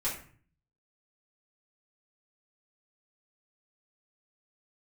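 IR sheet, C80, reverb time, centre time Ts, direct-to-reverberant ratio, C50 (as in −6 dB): 10.5 dB, 0.45 s, 31 ms, −9.0 dB, 6.0 dB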